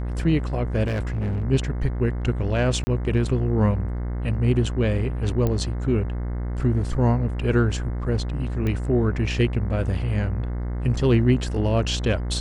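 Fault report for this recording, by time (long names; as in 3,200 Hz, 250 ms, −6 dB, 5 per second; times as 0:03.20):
mains buzz 60 Hz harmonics 36 −27 dBFS
0:00.86–0:01.44: clipping −22 dBFS
0:02.84–0:02.87: drop-out 30 ms
0:05.47: click −12 dBFS
0:08.67: click −16 dBFS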